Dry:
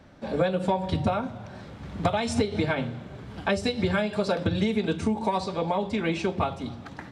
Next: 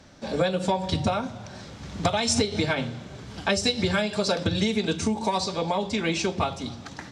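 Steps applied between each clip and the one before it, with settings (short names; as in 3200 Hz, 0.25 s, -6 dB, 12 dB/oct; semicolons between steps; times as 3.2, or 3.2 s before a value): bell 6100 Hz +13.5 dB 1.5 oct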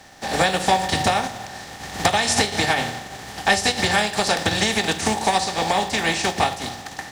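spectral contrast lowered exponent 0.51; small resonant body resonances 780/1800 Hz, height 14 dB, ringing for 40 ms; gain +2.5 dB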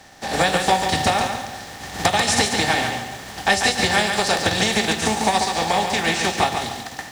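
lo-fi delay 0.141 s, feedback 35%, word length 7-bit, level -5.5 dB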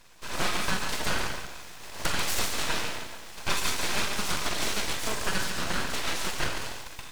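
on a send at -4 dB: reverb RT60 0.45 s, pre-delay 27 ms; on the sum: full-wave rectifier; gain -8 dB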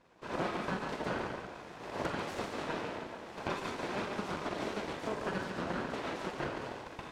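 recorder AGC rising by 13 dB/s; band-pass 370 Hz, Q 0.65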